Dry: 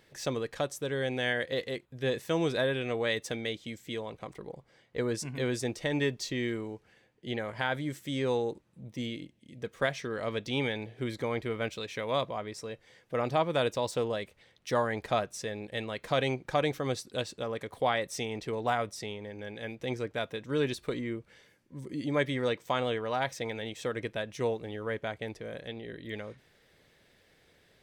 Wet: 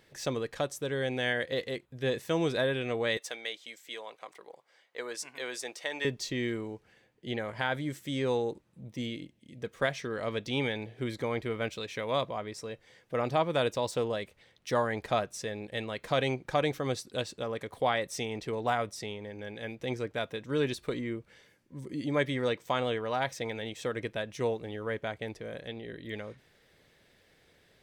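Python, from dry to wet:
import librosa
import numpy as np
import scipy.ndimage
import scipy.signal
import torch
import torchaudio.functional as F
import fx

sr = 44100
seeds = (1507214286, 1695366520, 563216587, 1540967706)

y = fx.highpass(x, sr, hz=670.0, slope=12, at=(3.17, 6.05))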